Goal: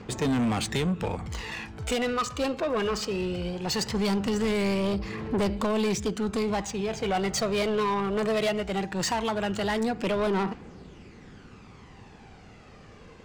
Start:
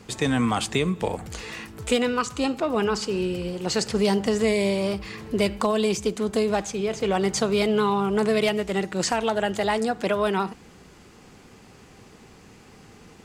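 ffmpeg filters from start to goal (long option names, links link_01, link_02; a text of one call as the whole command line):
ffmpeg -i in.wav -af "aphaser=in_gain=1:out_gain=1:delay=1.9:decay=0.44:speed=0.19:type=triangular,adynamicsmooth=sensitivity=7.5:basefreq=4700,asoftclip=type=tanh:threshold=-21.5dB" out.wav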